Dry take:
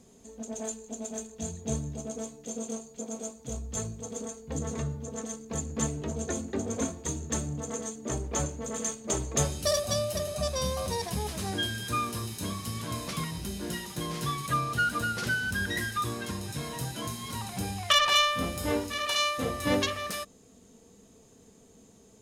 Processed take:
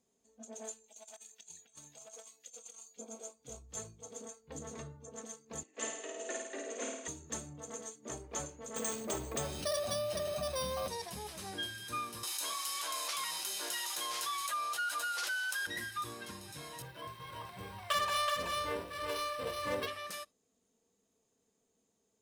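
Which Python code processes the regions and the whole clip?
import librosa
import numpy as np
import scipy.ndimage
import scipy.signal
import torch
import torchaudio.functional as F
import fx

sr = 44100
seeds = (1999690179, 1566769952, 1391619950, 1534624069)

y = fx.chain(x, sr, fx.highpass(hz=1000.0, slope=6),
    fx.high_shelf(hz=3100.0, db=3.0),
    fx.over_compress(threshold_db=-43.0, ratio=-0.5), at=(0.88, 2.96))
y = fx.chain(y, sr, fx.cabinet(low_hz=270.0, low_slope=24, high_hz=9300.0, hz=(610.0, 940.0, 1900.0, 2800.0), db=(6, -3, 8, 9)),
    fx.room_flutter(wall_m=9.1, rt60_s=1.2),
    fx.upward_expand(threshold_db=-41.0, expansion=1.5), at=(5.63, 7.08))
y = fx.chain(y, sr, fx.high_shelf(hz=8900.0, db=-11.5),
    fx.resample_bad(factor=3, down='filtered', up='hold'),
    fx.env_flatten(amount_pct=70), at=(8.76, 10.88))
y = fx.chain(y, sr, fx.highpass(hz=830.0, slope=12),
    fx.peak_eq(hz=1900.0, db=-3.5, octaves=0.8),
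    fx.env_flatten(amount_pct=70), at=(12.23, 15.67))
y = fx.chain(y, sr, fx.median_filter(points=9),
    fx.comb(ms=1.9, depth=0.49),
    fx.echo_single(ms=377, db=-4.0), at=(16.82, 19.87))
y = fx.noise_reduce_blind(y, sr, reduce_db=11)
y = fx.low_shelf(y, sr, hz=230.0, db=-11.5)
y = y * 10.0 ** (-7.5 / 20.0)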